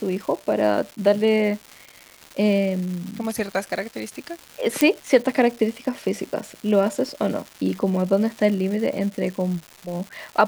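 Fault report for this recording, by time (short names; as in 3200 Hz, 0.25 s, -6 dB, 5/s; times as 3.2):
crackle 430/s -31 dBFS
4.81 pop -3 dBFS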